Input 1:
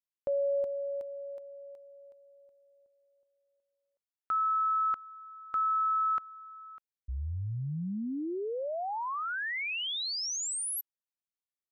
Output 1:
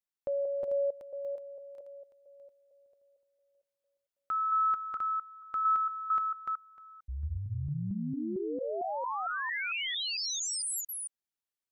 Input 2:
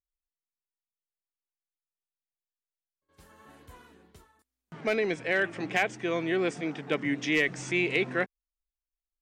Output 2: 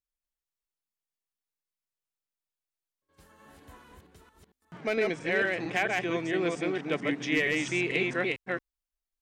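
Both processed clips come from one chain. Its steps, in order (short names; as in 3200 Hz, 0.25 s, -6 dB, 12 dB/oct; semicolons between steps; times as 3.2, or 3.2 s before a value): reverse delay 0.226 s, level -2 dB; gain -2 dB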